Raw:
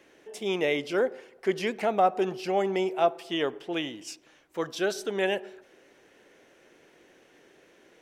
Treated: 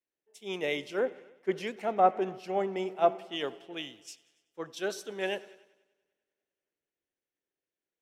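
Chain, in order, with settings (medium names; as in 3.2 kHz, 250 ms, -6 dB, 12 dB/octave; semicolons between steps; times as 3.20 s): band-stop 4.8 kHz, Q 18; on a send: multi-head delay 97 ms, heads all three, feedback 66%, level -23.5 dB; on the sum: three bands expanded up and down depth 100%; trim -6.5 dB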